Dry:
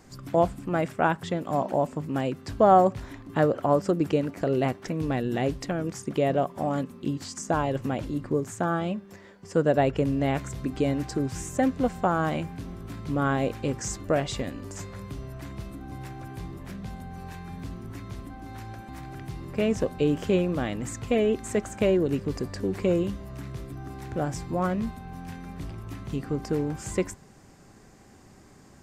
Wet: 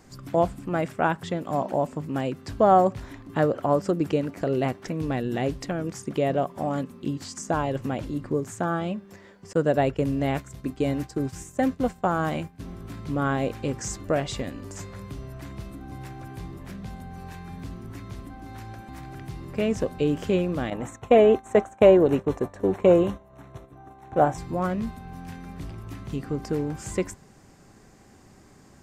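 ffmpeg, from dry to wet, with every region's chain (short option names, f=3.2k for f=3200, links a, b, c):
-filter_complex "[0:a]asettb=1/sr,asplit=3[a][b][c];[a]atrim=end=9.534[d];[b]atrim=start=9.53:end=12.6,asetpts=PTS-STARTPTS,afade=t=in:d=0.004:c=qsin,afade=t=out:st=3.066:d=0.004:c=qsin,agate=range=-33dB:threshold=-30dB:ratio=3:release=100:detection=peak,highshelf=f=9.4k:g=6[e];[c]atrim=start=12.596[f];[d][e]acrossfade=d=0.004:c1=hsin:c2=qsin[g];[g][f]acrossfade=d=0.004:c1=qsin:c2=hsin,asettb=1/sr,asplit=3[h][i][j];[h]atrim=end=20.704[k];[i]atrim=start=20.7:end=24.38,asetpts=PTS-STARTPTS,afade=t=in:d=0.004:c=qsin,afade=t=out:st=3.676:d=0.004:c=qsin,agate=range=-33dB:threshold=-29dB:ratio=3:release=100:detection=peak,asuperstop=centerf=4800:order=4:qfactor=4.4,equalizer=f=780:t=o:w=1.8:g=13.5[l];[j]atrim=start=24.376[m];[k][l]acrossfade=d=0.004:c1=hsin:c2=qsin[n];[n][m]acrossfade=d=0.004:c1=qsin:c2=hsin"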